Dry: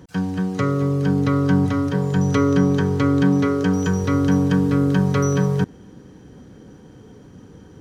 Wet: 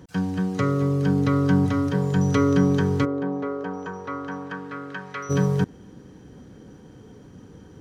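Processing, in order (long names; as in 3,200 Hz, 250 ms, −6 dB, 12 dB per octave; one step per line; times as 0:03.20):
0:03.04–0:05.29: resonant band-pass 550 Hz → 2,000 Hz, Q 1.3
level −2 dB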